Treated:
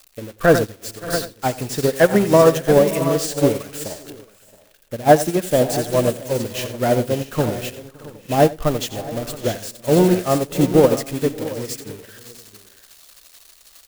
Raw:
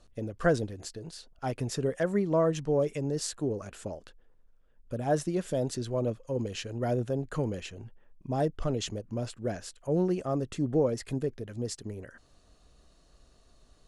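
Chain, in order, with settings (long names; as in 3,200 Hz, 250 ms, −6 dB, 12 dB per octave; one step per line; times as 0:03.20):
spike at every zero crossing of −26 dBFS
bass and treble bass −5 dB, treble −7 dB
on a send: multi-tap delay 88/567/624/672/761 ms −9.5/−14.5/−14.5/−9.5/−15 dB
on the sum: dynamic equaliser 420 Hz, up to −3 dB, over −39 dBFS, Q 2.1
in parallel at −7.5 dB: soft clipping −24.5 dBFS, distortion −15 dB
on the sum: convolution reverb RT60 2.8 s, pre-delay 8 ms, DRR 17 dB
boost into a limiter +17.5 dB
expander for the loud parts 2.5 to 1, over −23 dBFS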